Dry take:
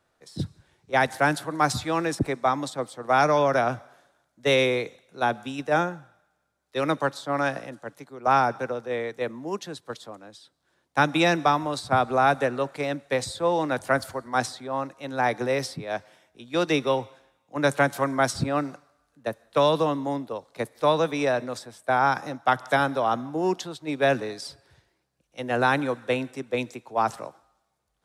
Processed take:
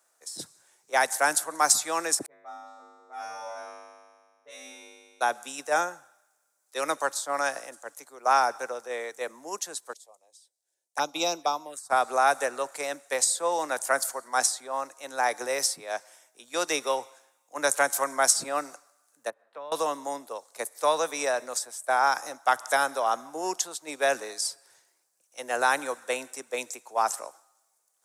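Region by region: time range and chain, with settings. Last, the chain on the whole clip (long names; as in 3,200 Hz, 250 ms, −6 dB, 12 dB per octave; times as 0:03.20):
0:02.26–0:05.21: low-pass that shuts in the quiet parts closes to 330 Hz, open at −16.5 dBFS + tuned comb filter 52 Hz, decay 1.7 s, harmonics odd, mix 100%
0:09.93–0:11.90: phaser swept by the level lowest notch 200 Hz, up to 1,800 Hz, full sweep at −19.5 dBFS + expander for the loud parts, over −45 dBFS
0:19.30–0:19.72: downward compressor 2 to 1, threshold −44 dBFS + high-frequency loss of the air 490 metres
whole clip: high-pass filter 600 Hz 12 dB per octave; high shelf with overshoot 5,100 Hz +12 dB, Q 1.5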